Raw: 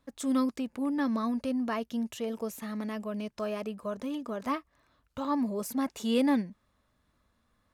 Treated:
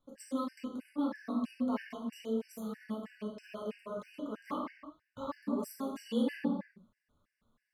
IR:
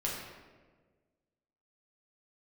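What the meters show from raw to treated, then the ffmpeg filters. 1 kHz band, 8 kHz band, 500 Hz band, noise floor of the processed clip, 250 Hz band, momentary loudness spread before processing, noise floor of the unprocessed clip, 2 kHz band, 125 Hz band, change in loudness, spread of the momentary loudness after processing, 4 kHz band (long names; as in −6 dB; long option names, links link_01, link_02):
−7.0 dB, −10.0 dB, −5.5 dB, below −85 dBFS, −6.0 dB, 9 LU, −74 dBFS, −7.5 dB, can't be measured, −6.0 dB, 10 LU, −8.0 dB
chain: -filter_complex "[1:a]atrim=start_sample=2205,afade=type=out:start_time=0.43:duration=0.01,atrim=end_sample=19404[link_01];[0:a][link_01]afir=irnorm=-1:irlink=0,afftfilt=real='re*gt(sin(2*PI*3.1*pts/sr)*(1-2*mod(floor(b*sr/1024/1500),2)),0)':imag='im*gt(sin(2*PI*3.1*pts/sr)*(1-2*mod(floor(b*sr/1024/1500),2)),0)':win_size=1024:overlap=0.75,volume=-8dB"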